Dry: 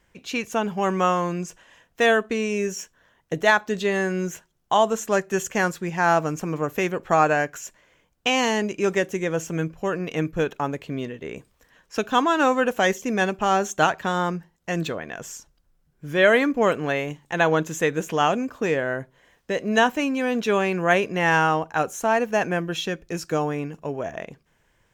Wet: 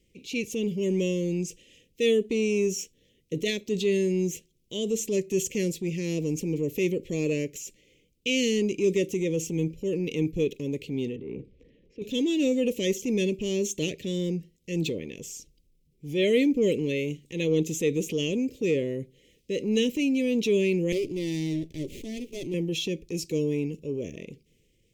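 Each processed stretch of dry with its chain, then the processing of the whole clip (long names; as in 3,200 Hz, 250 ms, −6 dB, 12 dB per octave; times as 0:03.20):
0:11.16–0:12.02: low-pass filter 1,400 Hz + transient designer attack −11 dB, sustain +7 dB + multiband upward and downward compressor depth 40%
0:20.92–0:22.54: phaser with its sweep stopped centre 320 Hz, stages 8 + windowed peak hold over 9 samples
whole clip: inverse Chebyshev band-stop filter 700–1,600 Hz, stop band 40 dB; parametric band 410 Hz +3.5 dB 2.1 octaves; transient designer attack −4 dB, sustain +3 dB; level −2 dB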